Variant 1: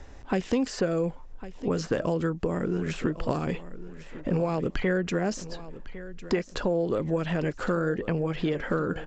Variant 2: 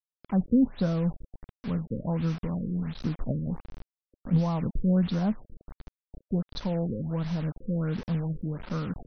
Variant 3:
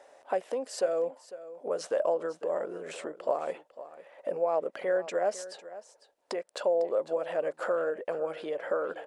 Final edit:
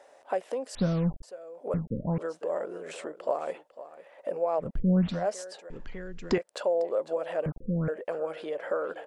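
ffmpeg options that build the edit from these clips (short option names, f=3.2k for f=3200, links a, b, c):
-filter_complex "[1:a]asplit=4[a][b][c][d];[2:a]asplit=6[e][f][g][h][i][j];[e]atrim=end=0.752[k];[a]atrim=start=0.748:end=1.232[l];[f]atrim=start=1.228:end=1.742[m];[b]atrim=start=1.738:end=2.182[n];[g]atrim=start=2.178:end=4.81[o];[c]atrim=start=4.57:end=5.28[p];[h]atrim=start=5.04:end=5.702[q];[0:a]atrim=start=5.698:end=6.382[r];[i]atrim=start=6.378:end=7.462[s];[d]atrim=start=7.458:end=7.882[t];[j]atrim=start=7.878[u];[k][l]acrossfade=d=0.004:c1=hsin:c2=hsin[v];[v][m]acrossfade=d=0.004:c1=hsin:c2=hsin[w];[w][n]acrossfade=d=0.004:c1=hsin:c2=hsin[x];[x][o]acrossfade=d=0.004:c1=hsin:c2=hsin[y];[y][p]acrossfade=d=0.24:c1=tri:c2=tri[z];[z][q]acrossfade=d=0.24:c1=tri:c2=tri[aa];[aa][r]acrossfade=d=0.004:c1=hsin:c2=hsin[ab];[ab][s]acrossfade=d=0.004:c1=hsin:c2=hsin[ac];[ac][t]acrossfade=d=0.004:c1=hsin:c2=hsin[ad];[ad][u]acrossfade=d=0.004:c1=hsin:c2=hsin"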